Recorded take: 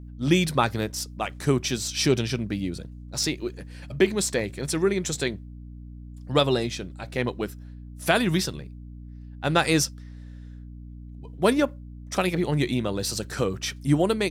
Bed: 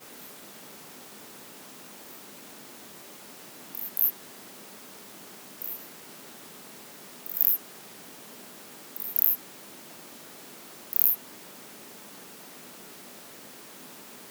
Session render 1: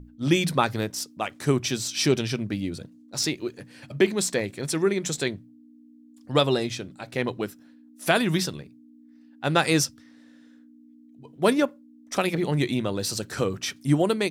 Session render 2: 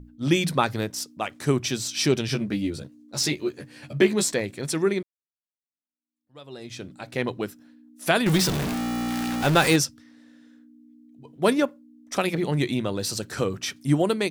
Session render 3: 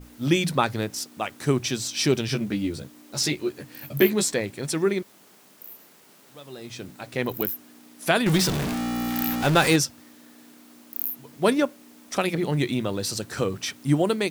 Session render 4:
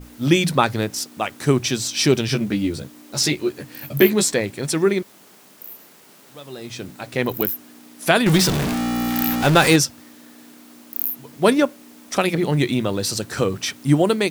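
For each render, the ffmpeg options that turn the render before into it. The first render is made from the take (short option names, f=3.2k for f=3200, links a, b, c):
-af "bandreject=f=60:t=h:w=6,bandreject=f=120:t=h:w=6,bandreject=f=180:t=h:w=6"
-filter_complex "[0:a]asettb=1/sr,asplit=3[a][b][c];[a]atrim=end=2.274[d];[b]atrim=start=2.27:end=4.34,asetpts=PTS-STARTPTS,afade=t=in:d=0.004:c=qsin,afade=t=out:st=2.066:d=0.004:c=qsin,asplit=2[e][f];[f]adelay=14,volume=-2.5dB[g];[e][g]amix=inputs=2:normalize=0,atrim=end_sample=91287[h];[c]atrim=start=4.336[i];[d][h]acrossfade=d=0.004:c1=hsin:c2=qsin[j];[j][i]acrossfade=d=0.004:c1=qsin:c2=hsin,asettb=1/sr,asplit=3[k][l][m];[k]atrim=end=8.264[n];[l]atrim=start=8.26:end=9.76,asetpts=PTS-STARTPTS,afade=t=in:d=0.004:c=qsin,afade=t=out:st=1.496:d=0.004:c=qsin,aeval=exprs='val(0)+0.5*0.0841*sgn(val(0))':c=same[o];[m]atrim=start=9.756[p];[n][o]acrossfade=d=0.004:c1=hsin:c2=qsin[q];[q][p]acrossfade=d=0.004:c1=qsin:c2=hsin,asplit=2[r][s];[r]atrim=end=5.03,asetpts=PTS-STARTPTS,afade=t=out:st=5.026:d=0.004:c=hsin[t];[s]atrim=start=5.03,asetpts=PTS-STARTPTS,afade=t=in:d=1.82:c=exp[u];[t][u]concat=n=2:v=0:a=1"
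-filter_complex "[1:a]volume=-7.5dB[a];[0:a][a]amix=inputs=2:normalize=0"
-af "volume=5dB,alimiter=limit=-1dB:level=0:latency=1"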